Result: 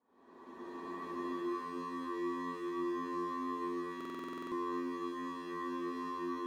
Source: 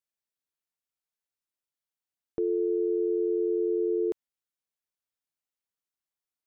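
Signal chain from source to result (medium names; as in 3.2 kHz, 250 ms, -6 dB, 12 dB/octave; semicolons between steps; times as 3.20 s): inverse Chebyshev low-pass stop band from 650 Hz, stop band 40 dB; wavefolder -36.5 dBFS; Paulstretch 8.6×, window 0.25 s, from 2.27 s; flutter echo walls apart 11.8 m, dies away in 0.7 s; buffer glitch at 3.96 s, samples 2048, times 11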